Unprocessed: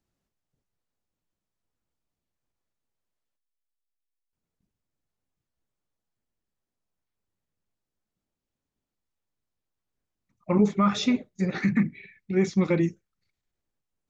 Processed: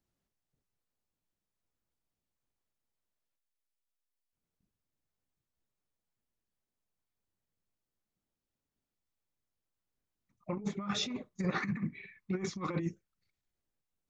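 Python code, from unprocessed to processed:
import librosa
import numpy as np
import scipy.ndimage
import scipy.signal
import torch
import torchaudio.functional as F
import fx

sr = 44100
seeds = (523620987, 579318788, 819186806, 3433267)

y = fx.peak_eq(x, sr, hz=1100.0, db=14.0, octaves=0.5, at=(11.1, 12.8))
y = fx.over_compress(y, sr, threshold_db=-25.0, ratio=-0.5)
y = F.gain(torch.from_numpy(y), -8.0).numpy()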